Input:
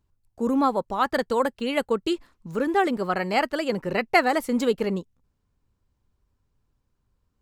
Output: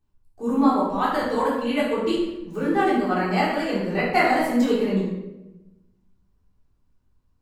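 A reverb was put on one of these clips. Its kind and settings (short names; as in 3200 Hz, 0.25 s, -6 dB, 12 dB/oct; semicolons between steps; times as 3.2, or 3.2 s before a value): shoebox room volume 400 m³, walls mixed, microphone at 3.6 m; gain -8.5 dB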